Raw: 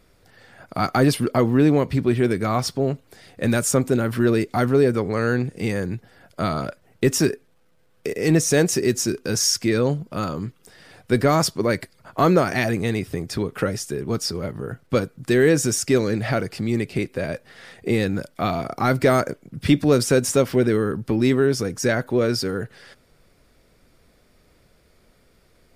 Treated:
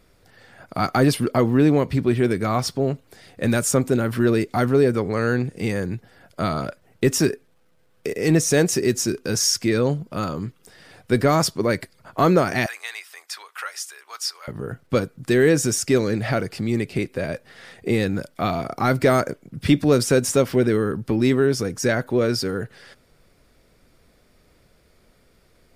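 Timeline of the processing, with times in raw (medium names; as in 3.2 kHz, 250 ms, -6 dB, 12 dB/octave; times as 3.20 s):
12.66–14.48 s: high-pass 960 Hz 24 dB/octave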